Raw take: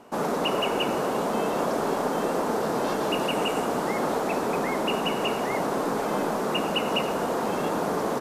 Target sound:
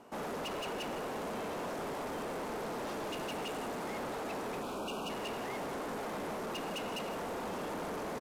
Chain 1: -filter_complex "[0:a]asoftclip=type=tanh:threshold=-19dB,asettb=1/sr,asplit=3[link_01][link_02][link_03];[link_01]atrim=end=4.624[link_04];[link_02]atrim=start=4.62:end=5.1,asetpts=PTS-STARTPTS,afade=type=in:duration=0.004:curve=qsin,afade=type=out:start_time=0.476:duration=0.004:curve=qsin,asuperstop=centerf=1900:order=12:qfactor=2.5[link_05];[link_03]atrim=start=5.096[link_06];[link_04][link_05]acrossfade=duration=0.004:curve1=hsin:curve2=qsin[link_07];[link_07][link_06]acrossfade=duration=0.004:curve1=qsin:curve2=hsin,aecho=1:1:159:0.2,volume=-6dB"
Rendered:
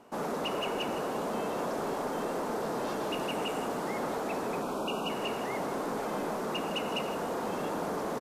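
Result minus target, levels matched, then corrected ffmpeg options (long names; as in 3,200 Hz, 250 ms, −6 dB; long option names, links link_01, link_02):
soft clipping: distortion −11 dB
-filter_complex "[0:a]asoftclip=type=tanh:threshold=-30.5dB,asettb=1/sr,asplit=3[link_01][link_02][link_03];[link_01]atrim=end=4.624[link_04];[link_02]atrim=start=4.62:end=5.1,asetpts=PTS-STARTPTS,afade=type=in:duration=0.004:curve=qsin,afade=type=out:start_time=0.476:duration=0.004:curve=qsin,asuperstop=centerf=1900:order=12:qfactor=2.5[link_05];[link_03]atrim=start=5.096[link_06];[link_04][link_05]acrossfade=duration=0.004:curve1=hsin:curve2=qsin[link_07];[link_07][link_06]acrossfade=duration=0.004:curve1=qsin:curve2=hsin,aecho=1:1:159:0.2,volume=-6dB"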